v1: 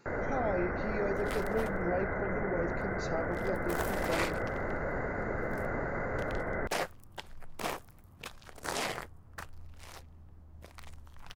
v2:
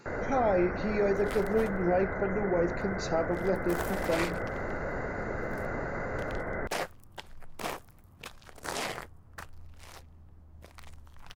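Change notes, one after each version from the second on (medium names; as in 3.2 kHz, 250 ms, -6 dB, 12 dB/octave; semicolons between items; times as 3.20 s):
speech +7.0 dB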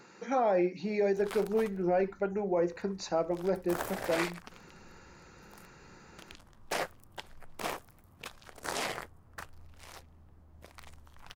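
first sound: muted; master: add bass shelf 160 Hz -5.5 dB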